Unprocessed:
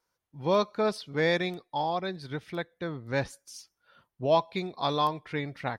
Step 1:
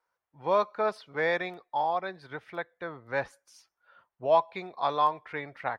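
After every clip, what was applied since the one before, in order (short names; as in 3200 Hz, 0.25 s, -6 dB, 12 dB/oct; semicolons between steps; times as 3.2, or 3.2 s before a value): three-band isolator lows -15 dB, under 530 Hz, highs -15 dB, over 2200 Hz; gain +3.5 dB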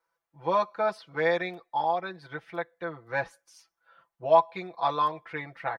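comb 6 ms, depth 83%; gain -1.5 dB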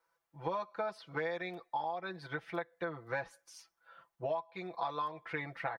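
compressor 12:1, threshold -34 dBFS, peak gain reduction 20.5 dB; gain +1 dB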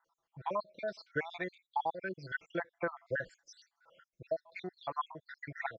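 random spectral dropouts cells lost 65%; downsampling 16000 Hz; gain +4 dB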